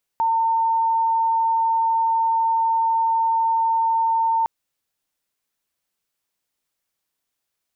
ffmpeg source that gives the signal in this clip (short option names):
-f lavfi -i "aevalsrc='0.15*sin(2*PI*906*t)':d=4.26:s=44100"